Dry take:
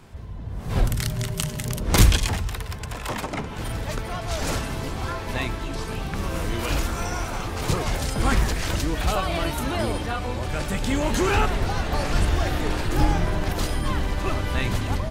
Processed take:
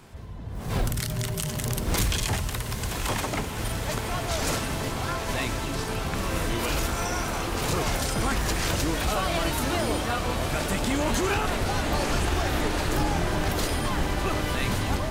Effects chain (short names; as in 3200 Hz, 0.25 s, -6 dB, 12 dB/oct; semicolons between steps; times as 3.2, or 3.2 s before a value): 0.55–2.24 G.711 law mismatch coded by mu; low shelf 110 Hz -5.5 dB; limiter -17 dBFS, peak gain reduction 10 dB; high shelf 6400 Hz +4 dB; on a send: diffused feedback echo 0.986 s, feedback 61%, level -7 dB